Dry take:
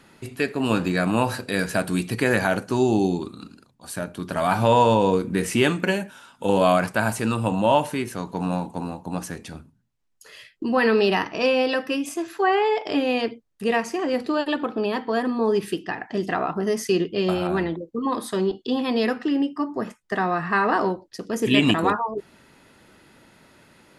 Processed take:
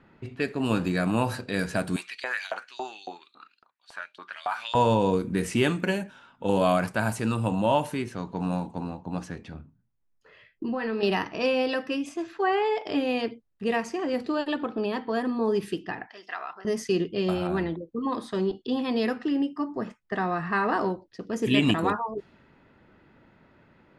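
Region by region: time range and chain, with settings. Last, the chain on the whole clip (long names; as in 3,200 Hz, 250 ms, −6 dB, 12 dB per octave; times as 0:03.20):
0:01.96–0:04.75: auto-filter high-pass saw up 3.6 Hz 690–4,900 Hz + downward compressor 2 to 1, threshold −24 dBFS
0:09.54–0:11.03: double-tracking delay 27 ms −11 dB + downward compressor 4 to 1, threshold −22 dBFS + high-shelf EQ 3,500 Hz −6.5 dB
0:16.09–0:16.65: high-pass filter 1,200 Hz + parametric band 5,300 Hz +14 dB 0.26 octaves + notch filter 5,200 Hz, Q 21
whole clip: low-shelf EQ 190 Hz +5 dB; low-pass that shuts in the quiet parts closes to 2,100 Hz, open at −17 dBFS; level −5 dB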